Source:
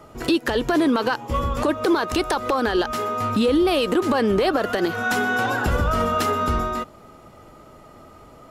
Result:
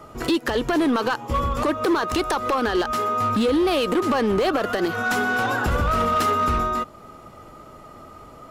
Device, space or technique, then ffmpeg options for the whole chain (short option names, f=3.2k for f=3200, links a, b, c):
clipper into limiter: -af "equalizer=f=1.2k:t=o:w=0.25:g=4.5,asoftclip=type=hard:threshold=-15.5dB,alimiter=limit=-17.5dB:level=0:latency=1:release=293,volume=1.5dB"